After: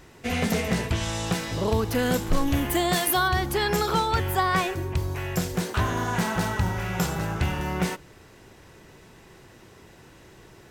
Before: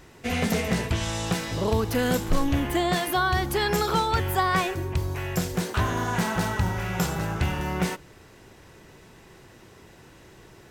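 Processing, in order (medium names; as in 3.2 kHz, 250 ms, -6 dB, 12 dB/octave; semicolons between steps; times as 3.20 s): 2.46–3.27 s: treble shelf 7.8 kHz -> 5.3 kHz +11 dB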